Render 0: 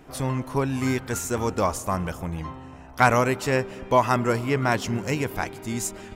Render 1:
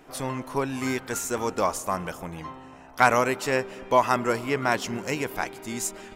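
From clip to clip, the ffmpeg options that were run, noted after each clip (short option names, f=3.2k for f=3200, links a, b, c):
-af "equalizer=f=71:w=0.53:g=-13.5"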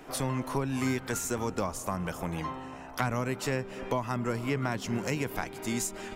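-filter_complex "[0:a]acrossover=split=210[a][b];[b]acompressor=threshold=-34dB:ratio=6[c];[a][c]amix=inputs=2:normalize=0,volume=3.5dB"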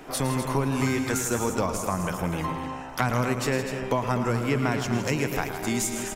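-af "aecho=1:1:110.8|160.3|250.7:0.282|0.316|0.355,volume=4.5dB"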